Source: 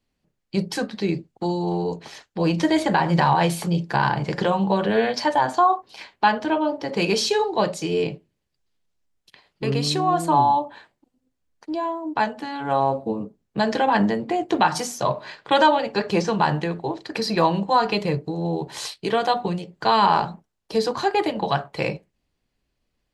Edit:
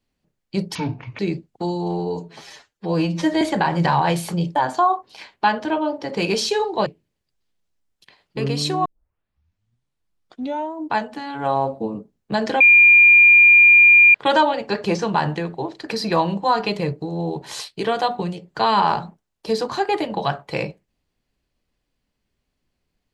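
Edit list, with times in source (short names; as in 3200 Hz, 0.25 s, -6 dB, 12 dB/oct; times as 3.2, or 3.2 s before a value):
0.75–1 speed 57%
1.8–2.75 stretch 1.5×
3.89–5.35 cut
7.66–8.12 cut
10.11 tape start 1.92 s
13.86–15.4 bleep 2400 Hz -7 dBFS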